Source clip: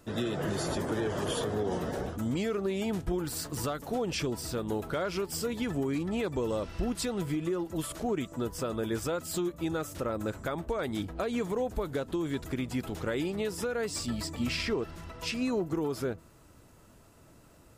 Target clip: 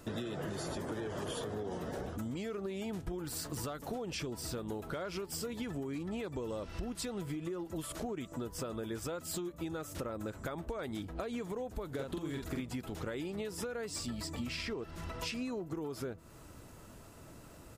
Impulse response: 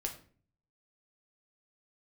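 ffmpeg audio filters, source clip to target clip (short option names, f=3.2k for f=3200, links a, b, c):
-filter_complex "[0:a]acompressor=threshold=-41dB:ratio=6,asplit=3[a][b][c];[a]afade=t=out:st=11.98:d=0.02[d];[b]asplit=2[e][f];[f]adelay=45,volume=-3dB[g];[e][g]amix=inputs=2:normalize=0,afade=t=in:st=11.98:d=0.02,afade=t=out:st=12.61:d=0.02[h];[c]afade=t=in:st=12.61:d=0.02[i];[d][h][i]amix=inputs=3:normalize=0,volume=4dB"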